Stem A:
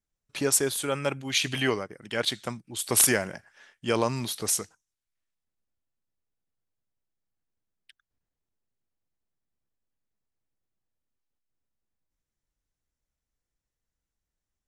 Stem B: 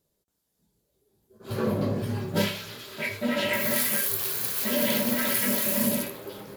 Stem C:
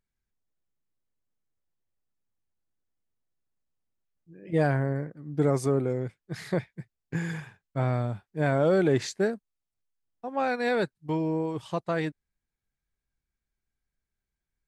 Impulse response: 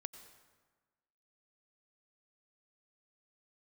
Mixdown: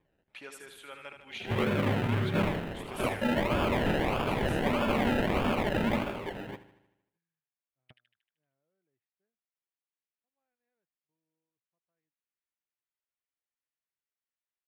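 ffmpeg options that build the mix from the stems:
-filter_complex "[0:a]highpass=f=1.2k:p=1,acompressor=threshold=-46dB:ratio=1.5,volume=-6.5dB,asplit=3[a][b][c];[b]volume=-7.5dB[d];[1:a]acrusher=samples=31:mix=1:aa=0.000001:lfo=1:lforange=18.6:lforate=1.6,volume=1.5dB,asplit=2[e][f];[f]volume=-15dB[g];[2:a]volume=-17dB[h];[c]apad=whole_len=647074[i];[h][i]sidechaingate=range=-45dB:threshold=-60dB:ratio=16:detection=peak[j];[d][g]amix=inputs=2:normalize=0,aecho=0:1:77|154|231|308|385|462|539|616:1|0.56|0.314|0.176|0.0983|0.0551|0.0308|0.0173[k];[a][e][j][k]amix=inputs=4:normalize=0,highshelf=f=3.9k:t=q:w=1.5:g=-11.5,alimiter=limit=-18.5dB:level=0:latency=1:release=92"

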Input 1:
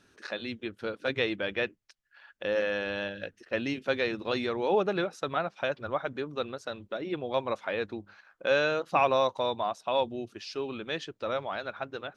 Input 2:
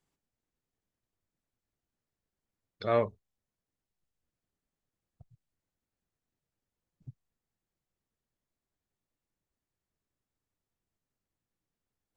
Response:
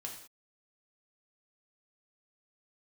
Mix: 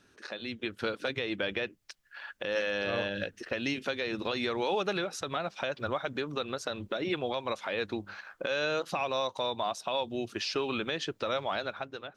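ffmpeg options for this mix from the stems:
-filter_complex "[0:a]acrossover=split=890|2800[a][b][c];[a]acompressor=threshold=-42dB:ratio=4[d];[b]acompressor=threshold=-46dB:ratio=4[e];[c]acompressor=threshold=-45dB:ratio=4[f];[d][e][f]amix=inputs=3:normalize=0,volume=-0.5dB[g];[1:a]volume=-16dB[h];[g][h]amix=inputs=2:normalize=0,dynaudnorm=f=140:g=9:m=11dB,alimiter=limit=-20dB:level=0:latency=1:release=143"

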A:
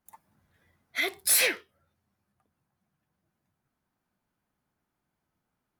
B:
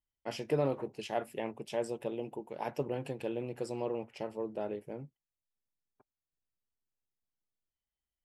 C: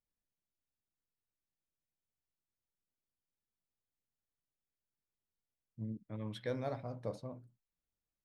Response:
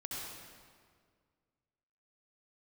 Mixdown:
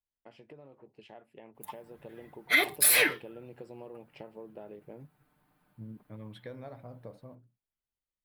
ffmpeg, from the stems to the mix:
-filter_complex "[0:a]acompressor=threshold=-29dB:ratio=6,aecho=1:1:6.7:0.81,adelay=1550,volume=1.5dB[a];[1:a]lowpass=5.9k,acompressor=threshold=-43dB:ratio=6,volume=-7dB[b];[2:a]acompressor=threshold=-39dB:ratio=6,volume=-8dB[c];[a][b][c]amix=inputs=3:normalize=0,equalizer=f=6.1k:t=o:w=0.86:g=-11,dynaudnorm=f=710:g=5:m=7.5dB"

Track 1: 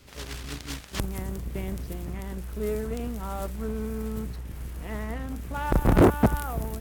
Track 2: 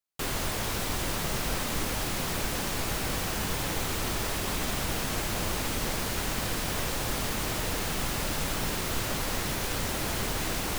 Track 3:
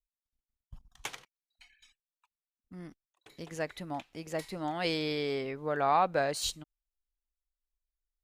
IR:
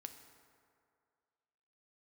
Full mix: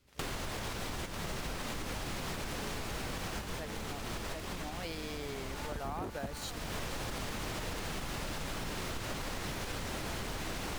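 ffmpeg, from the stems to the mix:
-filter_complex "[0:a]volume=-16dB[a];[1:a]highshelf=f=9.4k:g=-11.5,alimiter=level_in=1dB:limit=-24dB:level=0:latency=1:release=142,volume=-1dB,volume=2.5dB,asplit=2[b][c];[c]volume=-17dB[d];[2:a]acompressor=mode=upward:threshold=-41dB:ratio=2.5,acrusher=bits=5:mix=0:aa=0.5,volume=-9dB,asplit=2[e][f];[f]apad=whole_len=475586[g];[b][g]sidechaincompress=threshold=-53dB:ratio=5:attack=33:release=336[h];[3:a]atrim=start_sample=2205[i];[d][i]afir=irnorm=-1:irlink=0[j];[a][h][e][j]amix=inputs=4:normalize=0,acompressor=threshold=-35dB:ratio=6"

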